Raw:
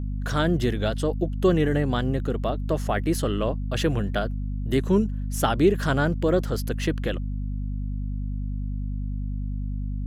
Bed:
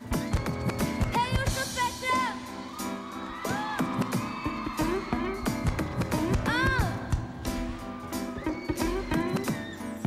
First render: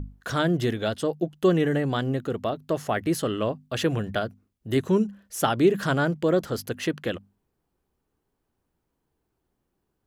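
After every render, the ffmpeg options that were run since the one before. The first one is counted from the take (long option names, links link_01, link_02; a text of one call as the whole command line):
ffmpeg -i in.wav -af "bandreject=frequency=50:width_type=h:width=6,bandreject=frequency=100:width_type=h:width=6,bandreject=frequency=150:width_type=h:width=6,bandreject=frequency=200:width_type=h:width=6,bandreject=frequency=250:width_type=h:width=6" out.wav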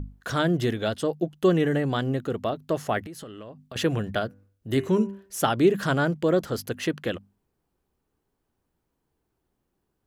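ffmpeg -i in.wav -filter_complex "[0:a]asettb=1/sr,asplit=3[link_01][link_02][link_03];[link_01]atrim=end=3.034[link_04];[link_02]atrim=start=3.03:end=3.76,asetpts=PTS-STARTPTS,afade=type=in:duration=0.004:curve=qsin,afade=type=out:start_time=0.726:duration=0.004:curve=qsin,acompressor=threshold=-36dB:ratio=16:attack=3.2:release=140:knee=1:detection=peak[link_05];[link_03]atrim=start=3.756[link_06];[link_04][link_05]acrossfade=duration=0.004:curve1=hsin:curve2=qsin[link_07];[link_07][link_06]acrossfade=duration=0.004:curve1=qsin:curve2=hsin,asettb=1/sr,asplit=3[link_08][link_09][link_10];[link_08]atrim=end=4.264[link_11];[link_09]atrim=start=4.26:end=5.38,asetpts=PTS-STARTPTS,afade=type=in:duration=0.004:curve=qsin,afade=type=out:start_time=1.116:duration=0.004:curve=qsin,bandreject=frequency=97.91:width_type=h:width=4,bandreject=frequency=195.82:width_type=h:width=4,bandreject=frequency=293.73:width_type=h:width=4,bandreject=frequency=391.64:width_type=h:width=4,bandreject=frequency=489.55:width_type=h:width=4,bandreject=frequency=587.46:width_type=h:width=4,bandreject=frequency=685.37:width_type=h:width=4,bandreject=frequency=783.28:width_type=h:width=4,bandreject=frequency=881.19:width_type=h:width=4,bandreject=frequency=979.1:width_type=h:width=4,bandreject=frequency=1077.01:width_type=h:width=4,bandreject=frequency=1174.92:width_type=h:width=4,bandreject=frequency=1272.83:width_type=h:width=4,bandreject=frequency=1370.74:width_type=h:width=4,bandreject=frequency=1468.65:width_type=h:width=4,bandreject=frequency=1566.56:width_type=h:width=4,bandreject=frequency=1664.47:width_type=h:width=4,bandreject=frequency=1762.38:width_type=h:width=4,bandreject=frequency=1860.29:width_type=h:width=4,bandreject=frequency=1958.2:width_type=h:width=4,bandreject=frequency=2056.11:width_type=h:width=4,bandreject=frequency=2154.02:width_type=h:width=4,bandreject=frequency=2251.93:width_type=h:width=4,bandreject=frequency=2349.84:width_type=h:width=4,bandreject=frequency=2447.75:width_type=h:width=4,bandreject=frequency=2545.66:width_type=h:width=4,bandreject=frequency=2643.57:width_type=h:width=4,bandreject=frequency=2741.48:width_type=h:width=4,bandreject=frequency=2839.39:width_type=h:width=4,bandreject=frequency=2937.3:width_type=h:width=4[link_12];[link_10]atrim=start=5.376[link_13];[link_11][link_12]acrossfade=duration=0.004:curve1=hsin:curve2=qsin[link_14];[link_14][link_13]acrossfade=duration=0.004:curve1=qsin:curve2=hsin" out.wav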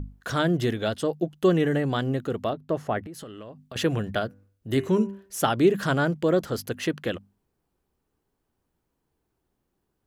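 ffmpeg -i in.wav -filter_complex "[0:a]asettb=1/sr,asplit=3[link_01][link_02][link_03];[link_01]atrim=end=2.534[link_04];[link_02]atrim=start=2.53:end=3.14,asetpts=PTS-STARTPTS,afade=type=in:duration=0.004:curve=qsin,afade=type=out:start_time=0.606:duration=0.004:curve=qsin,highshelf=frequency=2500:gain=-12[link_05];[link_03]atrim=start=3.136[link_06];[link_04][link_05]acrossfade=duration=0.004:curve1=hsin:curve2=qsin[link_07];[link_07][link_06]acrossfade=duration=0.004:curve1=qsin:curve2=hsin" out.wav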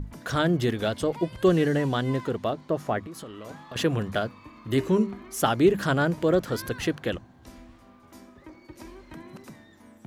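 ffmpeg -i in.wav -i bed.wav -filter_complex "[1:a]volume=-15.5dB[link_01];[0:a][link_01]amix=inputs=2:normalize=0" out.wav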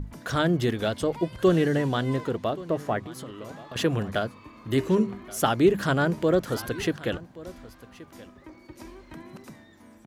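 ffmpeg -i in.wav -af "aecho=1:1:1127:0.112" out.wav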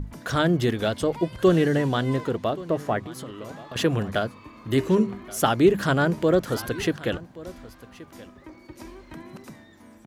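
ffmpeg -i in.wav -af "volume=2dB" out.wav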